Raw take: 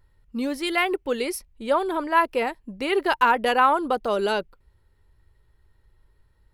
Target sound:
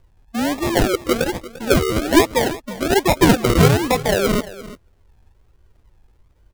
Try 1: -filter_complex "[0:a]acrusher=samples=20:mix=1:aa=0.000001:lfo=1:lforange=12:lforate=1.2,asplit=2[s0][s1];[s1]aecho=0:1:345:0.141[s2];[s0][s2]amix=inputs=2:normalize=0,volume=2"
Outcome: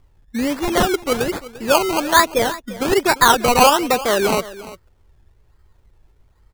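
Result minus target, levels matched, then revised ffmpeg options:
decimation with a swept rate: distortion -14 dB
-filter_complex "[0:a]acrusher=samples=41:mix=1:aa=0.000001:lfo=1:lforange=24.6:lforate=1.2,asplit=2[s0][s1];[s1]aecho=0:1:345:0.141[s2];[s0][s2]amix=inputs=2:normalize=0,volume=2"

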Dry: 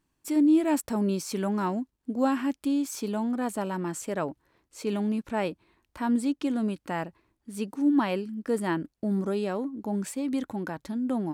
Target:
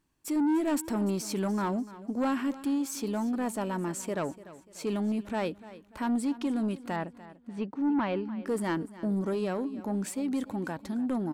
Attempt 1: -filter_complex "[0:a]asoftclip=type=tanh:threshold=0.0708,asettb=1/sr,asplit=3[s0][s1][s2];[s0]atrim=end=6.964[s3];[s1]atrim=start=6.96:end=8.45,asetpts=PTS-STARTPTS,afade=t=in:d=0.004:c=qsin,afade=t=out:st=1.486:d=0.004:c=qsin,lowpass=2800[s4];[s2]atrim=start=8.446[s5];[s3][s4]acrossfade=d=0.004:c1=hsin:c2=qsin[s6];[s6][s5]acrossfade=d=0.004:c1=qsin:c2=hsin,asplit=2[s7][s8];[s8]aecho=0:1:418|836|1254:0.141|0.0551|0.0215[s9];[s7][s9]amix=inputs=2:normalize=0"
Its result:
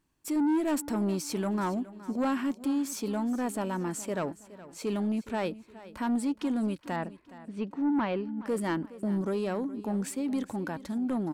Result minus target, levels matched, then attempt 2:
echo 124 ms late
-filter_complex "[0:a]asoftclip=type=tanh:threshold=0.0708,asettb=1/sr,asplit=3[s0][s1][s2];[s0]atrim=end=6.964[s3];[s1]atrim=start=6.96:end=8.45,asetpts=PTS-STARTPTS,afade=t=in:d=0.004:c=qsin,afade=t=out:st=1.486:d=0.004:c=qsin,lowpass=2800[s4];[s2]atrim=start=8.446[s5];[s3][s4]acrossfade=d=0.004:c1=hsin:c2=qsin[s6];[s6][s5]acrossfade=d=0.004:c1=qsin:c2=hsin,asplit=2[s7][s8];[s8]aecho=0:1:294|588|882:0.141|0.0551|0.0215[s9];[s7][s9]amix=inputs=2:normalize=0"

